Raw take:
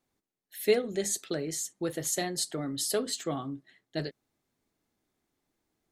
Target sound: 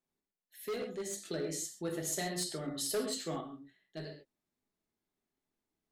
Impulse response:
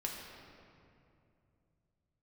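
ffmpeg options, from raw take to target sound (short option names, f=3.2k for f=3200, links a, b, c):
-filter_complex "[1:a]atrim=start_sample=2205,afade=t=out:st=0.19:d=0.01,atrim=end_sample=8820[a];[0:a][a]afir=irnorm=-1:irlink=0,volume=24.5dB,asoftclip=hard,volume=-24.5dB,asettb=1/sr,asplit=3[b][c][d];[b]atrim=end=1.254[e];[c]atrim=start=1.25:end=3.41,asetpts=PTS-STARTPTS,afade=t=in:d=0.004:c=qsin,afade=t=out:st=2.156:d=0.004:c=qsin,acontrast=29[f];[d]atrim=start=3.406[g];[e][f]acrossfade=d=0.004:c1=hsin:c2=qsin[h];[h][g]acrossfade=d=0.004:c1=qsin:c2=hsin,volume=-9dB"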